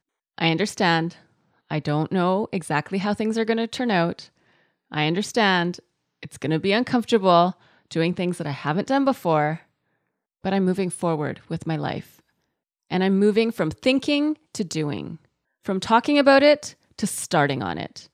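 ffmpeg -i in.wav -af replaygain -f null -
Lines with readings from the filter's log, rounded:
track_gain = +2.0 dB
track_peak = 0.491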